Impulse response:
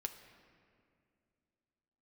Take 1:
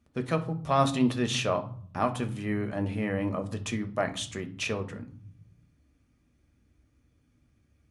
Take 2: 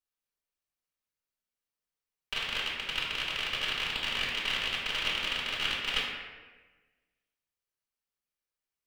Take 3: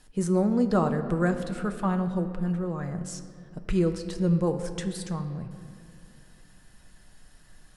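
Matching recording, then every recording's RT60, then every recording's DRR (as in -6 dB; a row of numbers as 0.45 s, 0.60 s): 3; 0.55 s, 1.3 s, 2.4 s; 6.0 dB, -5.5 dB, 6.0 dB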